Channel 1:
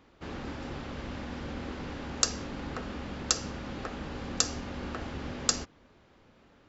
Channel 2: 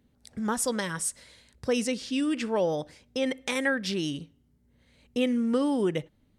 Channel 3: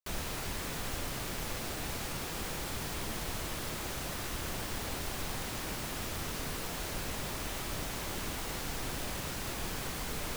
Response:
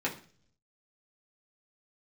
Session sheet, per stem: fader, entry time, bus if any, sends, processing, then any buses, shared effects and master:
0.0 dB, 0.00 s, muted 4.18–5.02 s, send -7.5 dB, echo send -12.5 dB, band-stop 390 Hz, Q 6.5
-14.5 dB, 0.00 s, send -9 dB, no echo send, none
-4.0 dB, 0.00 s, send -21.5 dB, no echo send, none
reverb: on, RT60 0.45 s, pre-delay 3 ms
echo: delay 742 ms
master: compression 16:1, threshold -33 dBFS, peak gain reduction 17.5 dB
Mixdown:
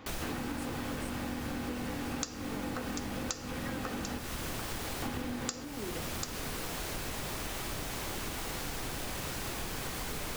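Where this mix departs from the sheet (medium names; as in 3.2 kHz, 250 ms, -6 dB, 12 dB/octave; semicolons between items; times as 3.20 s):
stem 1 0.0 dB -> +6.5 dB; stem 3 -4.0 dB -> +2.0 dB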